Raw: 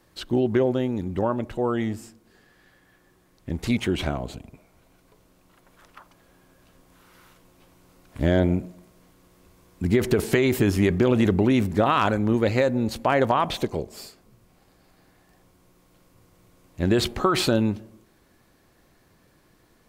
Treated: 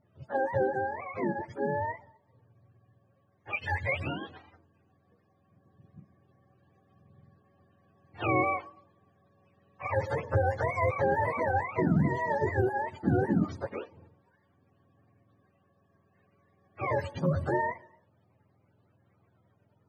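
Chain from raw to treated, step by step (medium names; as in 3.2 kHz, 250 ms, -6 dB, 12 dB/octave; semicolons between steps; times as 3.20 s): spectrum inverted on a logarithmic axis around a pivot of 450 Hz; level-controlled noise filter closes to 2 kHz, open at -17.5 dBFS; 3.53–4.00 s: resonant high shelf 1.6 kHz +7 dB, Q 3; trim -5.5 dB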